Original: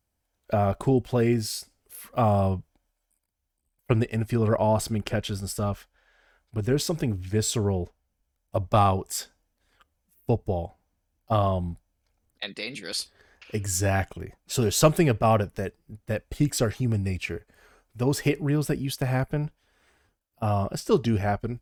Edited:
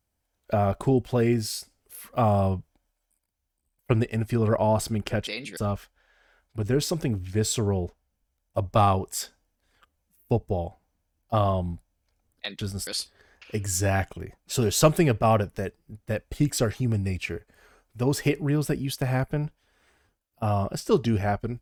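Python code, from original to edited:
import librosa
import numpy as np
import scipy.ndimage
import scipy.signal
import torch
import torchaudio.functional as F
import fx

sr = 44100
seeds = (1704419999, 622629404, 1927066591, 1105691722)

y = fx.edit(x, sr, fx.swap(start_s=5.27, length_s=0.28, other_s=12.57, other_length_s=0.3), tone=tone)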